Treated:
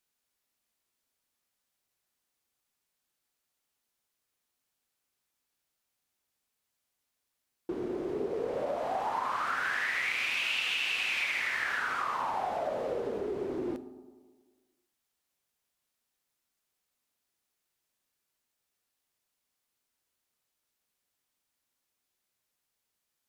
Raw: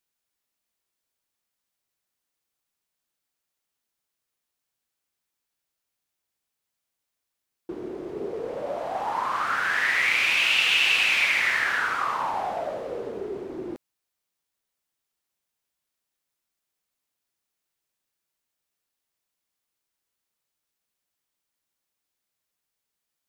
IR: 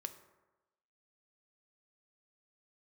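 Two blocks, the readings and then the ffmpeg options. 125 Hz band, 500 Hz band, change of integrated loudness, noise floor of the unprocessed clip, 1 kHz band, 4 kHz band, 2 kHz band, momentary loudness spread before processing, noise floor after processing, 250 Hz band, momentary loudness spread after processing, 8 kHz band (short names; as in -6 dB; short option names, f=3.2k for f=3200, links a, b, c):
-2.5 dB, -1.5 dB, -8.5 dB, -84 dBFS, -5.0 dB, -9.5 dB, -8.5 dB, 17 LU, -83 dBFS, -0.5 dB, 8 LU, -9.0 dB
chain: -filter_complex "[0:a]acompressor=threshold=-30dB:ratio=6,asplit=2[a][b];[1:a]atrim=start_sample=2205,asetrate=29988,aresample=44100[c];[b][c]afir=irnorm=-1:irlink=0,volume=7dB[d];[a][d]amix=inputs=2:normalize=0,volume=-8.5dB"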